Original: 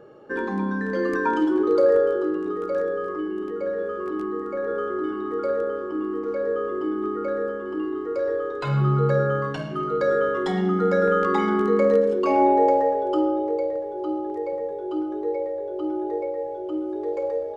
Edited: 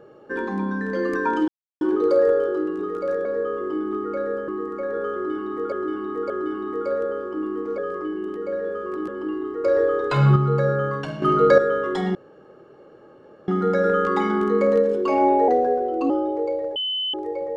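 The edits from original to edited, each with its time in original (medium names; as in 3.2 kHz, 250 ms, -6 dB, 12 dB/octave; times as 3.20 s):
1.48 s: insert silence 0.33 s
2.92–4.22 s: swap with 6.36–7.59 s
4.88–5.46 s: loop, 3 plays
8.15–8.87 s: gain +6 dB
9.73–10.09 s: gain +8.5 dB
10.66 s: insert room tone 1.33 s
12.66–13.21 s: speed 89%
13.87–14.25 s: bleep 3.03 kHz -22.5 dBFS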